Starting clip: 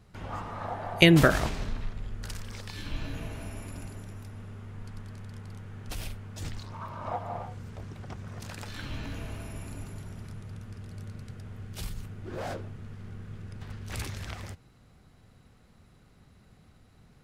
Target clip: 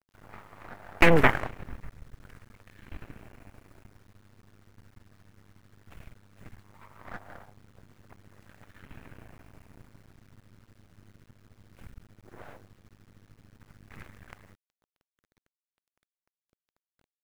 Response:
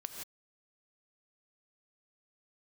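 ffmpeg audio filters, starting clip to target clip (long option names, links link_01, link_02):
-af "aeval=exprs='0.75*(cos(1*acos(clip(val(0)/0.75,-1,1)))-cos(1*PI/2))+0.376*(cos(6*acos(clip(val(0)/0.75,-1,1)))-cos(6*PI/2))+0.133*(cos(7*acos(clip(val(0)/0.75,-1,1)))-cos(7*PI/2))':channel_layout=same,highshelf=frequency=3000:width_type=q:width=1.5:gain=-13.5,acrusher=bits=7:dc=4:mix=0:aa=0.000001,volume=-3.5dB"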